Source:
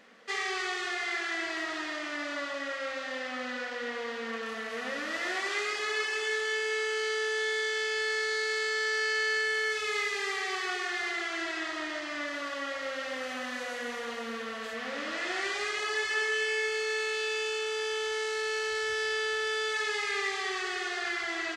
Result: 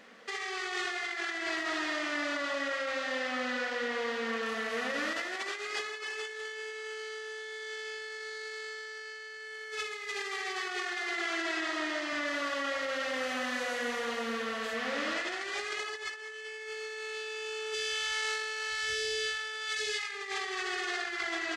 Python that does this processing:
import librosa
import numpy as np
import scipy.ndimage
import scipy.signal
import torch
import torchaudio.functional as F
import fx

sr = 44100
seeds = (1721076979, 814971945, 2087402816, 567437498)

y = fx.cheby1_highpass(x, sr, hz=210.0, order=2, at=(10.97, 12.13))
y = fx.phaser_stages(y, sr, stages=2, low_hz=230.0, high_hz=1100.0, hz=fx.line((17.73, 0.36), (20.12, 2.1)), feedback_pct=25, at=(17.73, 20.12), fade=0.02)
y = fx.over_compress(y, sr, threshold_db=-35.0, ratio=-0.5)